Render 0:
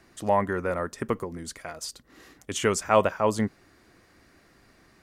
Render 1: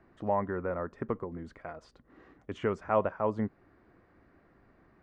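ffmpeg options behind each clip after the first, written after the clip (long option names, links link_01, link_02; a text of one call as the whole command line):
ffmpeg -i in.wav -filter_complex "[0:a]lowpass=1400,asplit=2[link_01][link_02];[link_02]acompressor=threshold=-31dB:ratio=6,volume=-2.5dB[link_03];[link_01][link_03]amix=inputs=2:normalize=0,volume=-7.5dB" out.wav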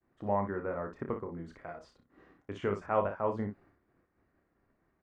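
ffmpeg -i in.wav -af "agate=range=-33dB:threshold=-54dB:ratio=3:detection=peak,aecho=1:1:30|59:0.447|0.355,volume=-3dB" out.wav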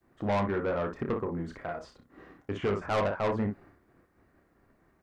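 ffmpeg -i in.wav -filter_complex "[0:a]acrossover=split=2900[link_01][link_02];[link_02]alimiter=level_in=31.5dB:limit=-24dB:level=0:latency=1:release=444,volume=-31.5dB[link_03];[link_01][link_03]amix=inputs=2:normalize=0,asoftclip=type=tanh:threshold=-32dB,volume=8.5dB" out.wav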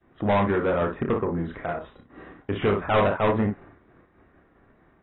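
ffmpeg -i in.wav -af "aresample=11025,aresample=44100,volume=6.5dB" -ar 22050 -c:a aac -b:a 16k out.aac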